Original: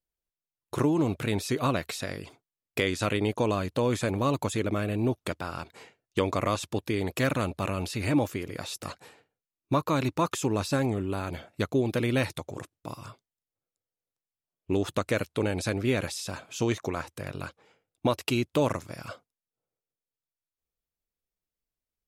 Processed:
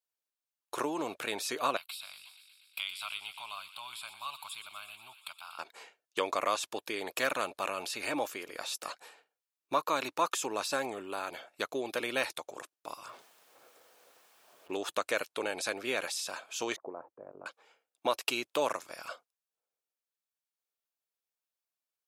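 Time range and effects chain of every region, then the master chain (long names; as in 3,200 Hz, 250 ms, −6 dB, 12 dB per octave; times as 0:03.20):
0:01.77–0:05.59: guitar amp tone stack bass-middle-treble 10-0-10 + phaser with its sweep stopped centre 1,800 Hz, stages 6 + delay with a high-pass on its return 120 ms, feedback 75%, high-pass 1,900 Hz, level −11 dB
0:13.08–0:14.72: converter with a step at zero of −42.5 dBFS + high-shelf EQ 2,800 Hz −11 dB + one half of a high-frequency compander decoder only
0:16.76–0:17.46: Bessel low-pass filter 560 Hz, order 4 + low-shelf EQ 92 Hz −8 dB
whole clip: high-pass filter 610 Hz 12 dB per octave; notch filter 2,000 Hz, Q 15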